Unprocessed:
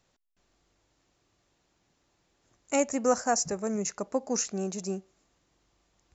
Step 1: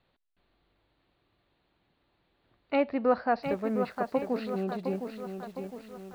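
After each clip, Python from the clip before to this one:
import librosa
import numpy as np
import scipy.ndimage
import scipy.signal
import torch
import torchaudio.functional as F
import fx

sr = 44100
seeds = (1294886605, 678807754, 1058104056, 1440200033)

y = scipy.signal.sosfilt(scipy.signal.butter(16, 4400.0, 'lowpass', fs=sr, output='sos'), x)
y = fx.echo_crushed(y, sr, ms=710, feedback_pct=55, bits=9, wet_db=-7)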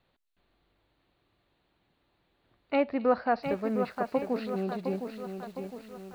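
y = fx.echo_wet_highpass(x, sr, ms=263, feedback_pct=81, hz=3500.0, wet_db=-13.5)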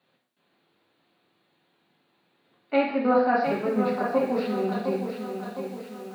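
y = scipy.signal.sosfilt(scipy.signal.butter(4, 150.0, 'highpass', fs=sr, output='sos'), x)
y = fx.rev_gated(y, sr, seeds[0], gate_ms=220, shape='falling', drr_db=-4.0)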